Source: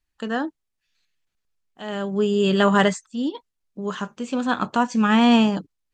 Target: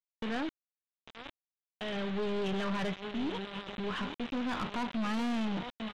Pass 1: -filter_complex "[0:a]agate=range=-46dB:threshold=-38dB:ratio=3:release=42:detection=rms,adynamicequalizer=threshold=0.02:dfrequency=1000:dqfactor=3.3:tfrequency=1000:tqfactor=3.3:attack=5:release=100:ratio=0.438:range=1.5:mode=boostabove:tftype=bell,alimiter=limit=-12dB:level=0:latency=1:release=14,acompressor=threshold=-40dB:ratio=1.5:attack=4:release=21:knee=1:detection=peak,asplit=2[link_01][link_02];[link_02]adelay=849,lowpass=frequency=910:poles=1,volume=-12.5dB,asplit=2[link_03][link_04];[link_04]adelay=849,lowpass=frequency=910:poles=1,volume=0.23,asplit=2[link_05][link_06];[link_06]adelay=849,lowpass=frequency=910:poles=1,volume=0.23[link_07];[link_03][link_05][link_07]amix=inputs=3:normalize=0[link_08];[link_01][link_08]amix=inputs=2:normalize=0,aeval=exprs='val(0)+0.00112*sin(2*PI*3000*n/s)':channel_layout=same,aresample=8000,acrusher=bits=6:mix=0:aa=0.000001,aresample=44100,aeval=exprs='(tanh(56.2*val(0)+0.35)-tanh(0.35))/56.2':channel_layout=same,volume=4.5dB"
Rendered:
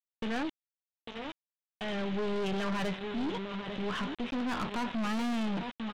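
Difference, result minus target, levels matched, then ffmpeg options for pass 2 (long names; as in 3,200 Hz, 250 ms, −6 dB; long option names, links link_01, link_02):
downward compressor: peak gain reduction −3 dB
-filter_complex "[0:a]agate=range=-46dB:threshold=-38dB:ratio=3:release=42:detection=rms,adynamicequalizer=threshold=0.02:dfrequency=1000:dqfactor=3.3:tfrequency=1000:tqfactor=3.3:attack=5:release=100:ratio=0.438:range=1.5:mode=boostabove:tftype=bell,alimiter=limit=-12dB:level=0:latency=1:release=14,acompressor=threshold=-49.5dB:ratio=1.5:attack=4:release=21:knee=1:detection=peak,asplit=2[link_01][link_02];[link_02]adelay=849,lowpass=frequency=910:poles=1,volume=-12.5dB,asplit=2[link_03][link_04];[link_04]adelay=849,lowpass=frequency=910:poles=1,volume=0.23,asplit=2[link_05][link_06];[link_06]adelay=849,lowpass=frequency=910:poles=1,volume=0.23[link_07];[link_03][link_05][link_07]amix=inputs=3:normalize=0[link_08];[link_01][link_08]amix=inputs=2:normalize=0,aeval=exprs='val(0)+0.00112*sin(2*PI*3000*n/s)':channel_layout=same,aresample=8000,acrusher=bits=6:mix=0:aa=0.000001,aresample=44100,aeval=exprs='(tanh(56.2*val(0)+0.35)-tanh(0.35))/56.2':channel_layout=same,volume=4.5dB"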